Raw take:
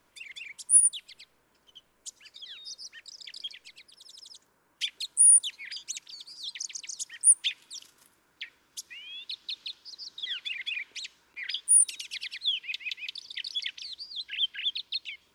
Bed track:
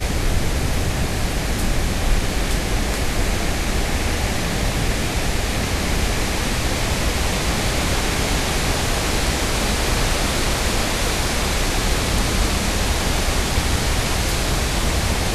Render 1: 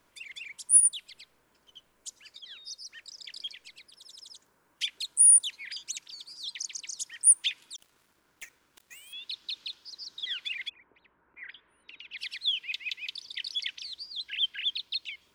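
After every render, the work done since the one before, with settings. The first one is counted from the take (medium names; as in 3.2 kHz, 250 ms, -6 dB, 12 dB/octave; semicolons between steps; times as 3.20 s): 2.39–2.89 s: three bands expanded up and down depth 70%; 7.76–9.13 s: dead-time distortion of 0.11 ms; 10.68–12.17 s: low-pass 1.1 kHz -> 2.9 kHz 24 dB/octave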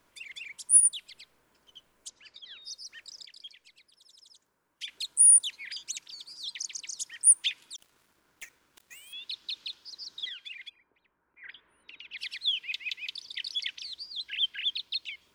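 2.08–2.62 s: low-pass 5 kHz; 3.25–4.88 s: gain -8 dB; 10.29–11.44 s: feedback comb 800 Hz, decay 0.42 s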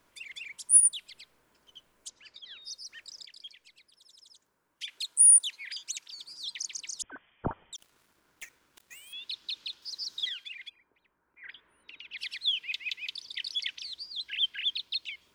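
4.84–6.18 s: bass shelf 320 Hz -10.5 dB; 7.02–7.73 s: frequency inversion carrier 3.4 kHz; 9.82–10.44 s: treble shelf 3.7 kHz +8.5 dB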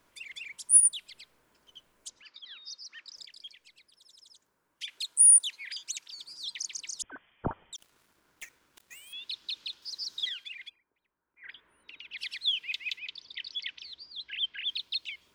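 2.22–3.16 s: cabinet simulation 240–5800 Hz, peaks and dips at 430 Hz -8 dB, 670 Hz -8 dB, 1.2 kHz +4 dB; 10.65–11.49 s: dip -9.5 dB, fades 0.16 s; 12.99–14.69 s: distance through air 160 m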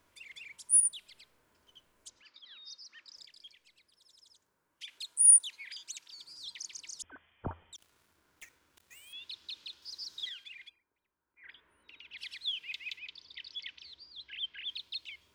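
peaking EQ 84 Hz +9.5 dB 0.33 oct; harmonic-percussive split percussive -7 dB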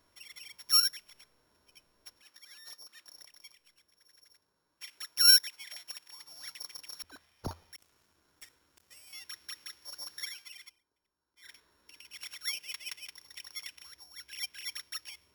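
sorted samples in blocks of 8 samples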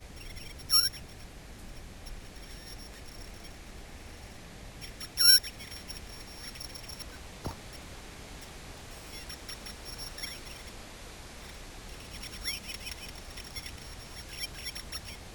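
add bed track -26 dB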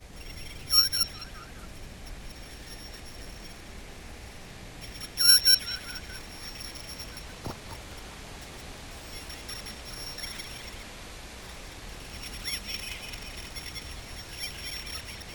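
chunks repeated in reverse 129 ms, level -1 dB; repeats whose band climbs or falls 208 ms, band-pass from 3.2 kHz, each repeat -0.7 oct, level -4.5 dB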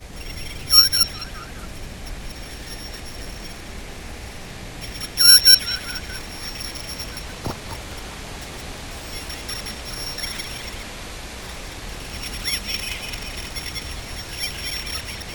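trim +9 dB; peak limiter -1 dBFS, peak gain reduction 2 dB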